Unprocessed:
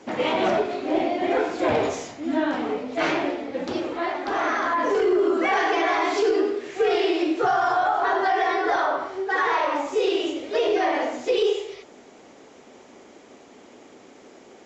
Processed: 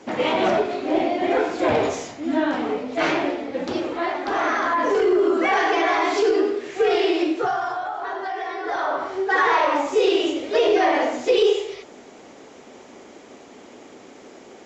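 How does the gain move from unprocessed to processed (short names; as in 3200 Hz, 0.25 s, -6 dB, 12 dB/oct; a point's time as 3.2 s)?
7.23 s +2 dB
7.83 s -7 dB
8.55 s -7 dB
9.12 s +4 dB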